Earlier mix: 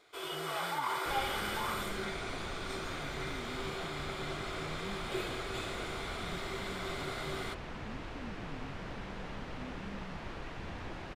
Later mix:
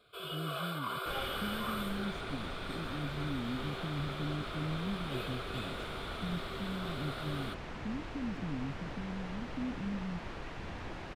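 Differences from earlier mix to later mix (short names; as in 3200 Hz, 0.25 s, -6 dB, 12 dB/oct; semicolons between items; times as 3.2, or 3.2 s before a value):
speech +10.0 dB; first sound: add fixed phaser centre 1300 Hz, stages 8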